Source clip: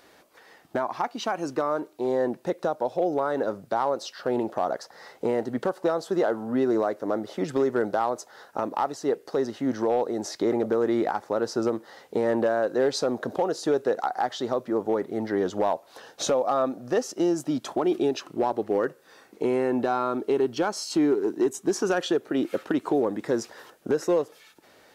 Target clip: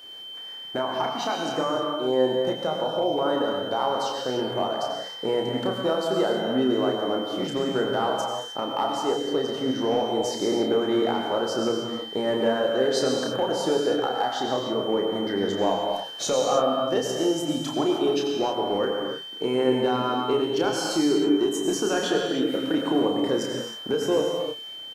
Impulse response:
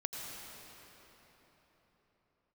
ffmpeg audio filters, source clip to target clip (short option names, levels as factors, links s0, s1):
-filter_complex "[0:a]crystalizer=i=0.5:c=0,aeval=exprs='val(0)+0.00794*sin(2*PI*3100*n/s)':c=same,asplit=2[s0][s1];[s1]adelay=31,volume=0.562[s2];[s0][s2]amix=inputs=2:normalize=0[s3];[1:a]atrim=start_sample=2205,afade=t=out:st=0.37:d=0.01,atrim=end_sample=16758[s4];[s3][s4]afir=irnorm=-1:irlink=0"